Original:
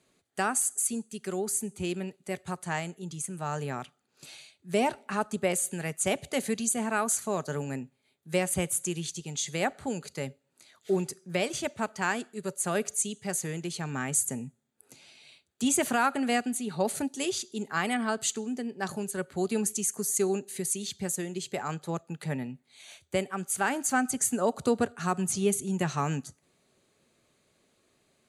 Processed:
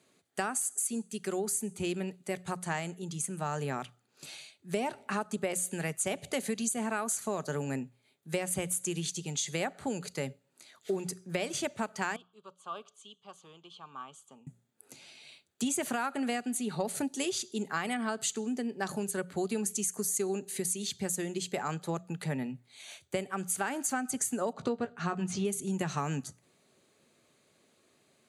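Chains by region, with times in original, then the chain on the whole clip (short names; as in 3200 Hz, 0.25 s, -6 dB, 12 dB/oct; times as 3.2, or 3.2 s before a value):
12.16–14.47 double band-pass 1900 Hz, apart 1.5 oct + tilt -2.5 dB/oct
24.53–25.45 LPF 4300 Hz + doubler 17 ms -8 dB
whole clip: HPF 100 Hz; notches 60/120/180 Hz; compressor, threshold -30 dBFS; gain +1.5 dB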